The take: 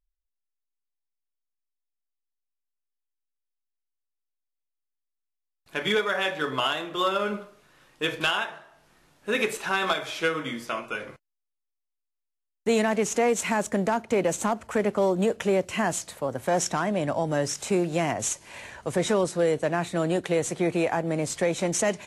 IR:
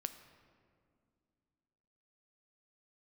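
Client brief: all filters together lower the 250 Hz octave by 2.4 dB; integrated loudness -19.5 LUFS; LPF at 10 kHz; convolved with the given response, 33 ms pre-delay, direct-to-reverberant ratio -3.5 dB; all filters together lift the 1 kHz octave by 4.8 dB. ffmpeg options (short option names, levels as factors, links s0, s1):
-filter_complex "[0:a]lowpass=10000,equalizer=f=250:t=o:g=-4,equalizer=f=1000:t=o:g=6.5,asplit=2[s0][s1];[1:a]atrim=start_sample=2205,adelay=33[s2];[s1][s2]afir=irnorm=-1:irlink=0,volume=1.88[s3];[s0][s3]amix=inputs=2:normalize=0,volume=1.06"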